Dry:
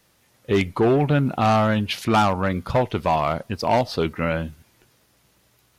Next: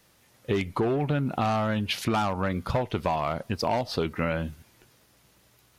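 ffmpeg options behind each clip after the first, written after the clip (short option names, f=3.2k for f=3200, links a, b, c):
-af "acompressor=threshold=-23dB:ratio=6"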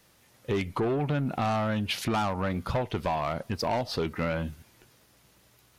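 -af "asoftclip=type=tanh:threshold=-20.5dB"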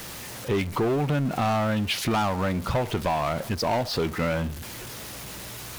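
-af "aeval=exprs='val(0)+0.5*0.0178*sgn(val(0))':c=same,volume=2dB"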